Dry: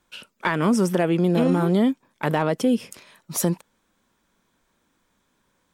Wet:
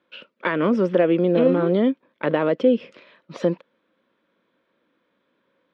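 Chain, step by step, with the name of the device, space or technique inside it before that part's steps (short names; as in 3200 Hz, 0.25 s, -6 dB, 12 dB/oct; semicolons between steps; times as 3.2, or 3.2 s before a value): kitchen radio (speaker cabinet 200–3500 Hz, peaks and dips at 310 Hz +4 dB, 530 Hz +9 dB, 820 Hz -7 dB)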